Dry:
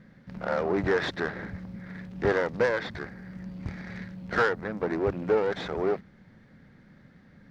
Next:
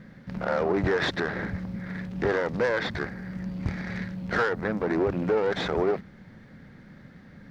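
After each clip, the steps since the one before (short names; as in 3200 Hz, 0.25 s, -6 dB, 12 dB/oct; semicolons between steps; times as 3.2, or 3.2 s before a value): limiter -22 dBFS, peak gain reduction 9.5 dB; gain +6 dB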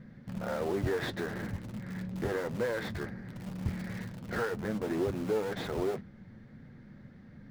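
low shelf 460 Hz +7.5 dB; in parallel at -11.5 dB: wrapped overs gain 23 dB; on the sum: flange 1.2 Hz, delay 8 ms, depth 1.2 ms, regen -47%; gain -7 dB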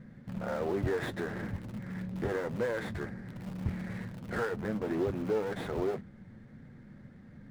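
median filter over 9 samples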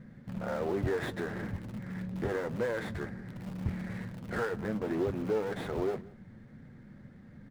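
echo 0.179 s -22.5 dB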